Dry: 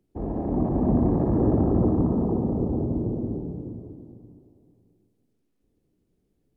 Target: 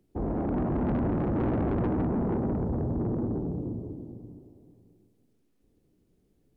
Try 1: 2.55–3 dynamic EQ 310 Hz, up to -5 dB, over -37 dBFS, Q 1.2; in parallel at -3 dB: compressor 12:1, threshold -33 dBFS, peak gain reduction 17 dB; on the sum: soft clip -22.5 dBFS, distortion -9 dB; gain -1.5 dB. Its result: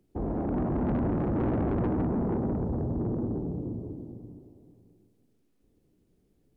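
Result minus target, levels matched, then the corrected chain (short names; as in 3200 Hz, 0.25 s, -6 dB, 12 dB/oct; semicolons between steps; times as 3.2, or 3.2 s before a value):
compressor: peak gain reduction +6 dB
2.55–3 dynamic EQ 310 Hz, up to -5 dB, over -37 dBFS, Q 1.2; in parallel at -3 dB: compressor 12:1, threshold -26.5 dBFS, peak gain reduction 11 dB; on the sum: soft clip -22.5 dBFS, distortion -9 dB; gain -1.5 dB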